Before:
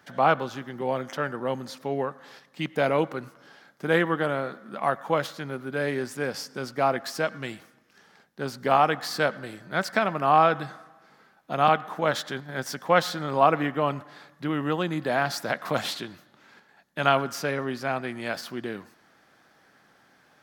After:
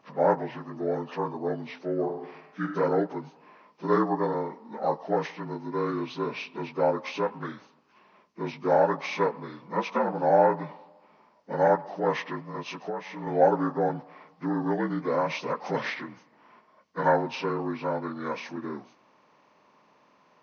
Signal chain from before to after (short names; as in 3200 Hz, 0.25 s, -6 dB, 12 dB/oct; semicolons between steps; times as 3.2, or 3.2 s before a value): inharmonic rescaling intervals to 76%; 1.93–2.71 reverb throw, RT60 0.89 s, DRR 5 dB; 12.55–13.27 compressor 5:1, threshold -32 dBFS, peak gain reduction 14.5 dB